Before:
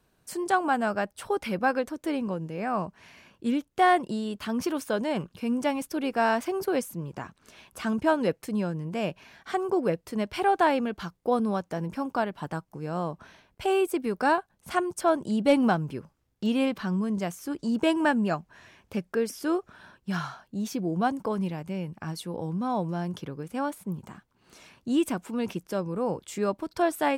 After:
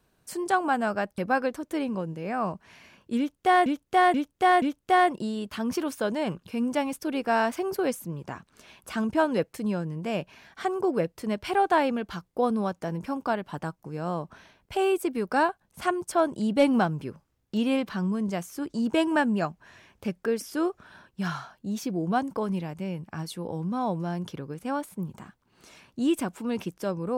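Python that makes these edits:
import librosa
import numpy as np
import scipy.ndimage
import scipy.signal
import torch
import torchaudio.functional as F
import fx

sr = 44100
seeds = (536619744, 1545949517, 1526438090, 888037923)

y = fx.edit(x, sr, fx.cut(start_s=1.18, length_s=0.33),
    fx.repeat(start_s=3.51, length_s=0.48, count=4), tone=tone)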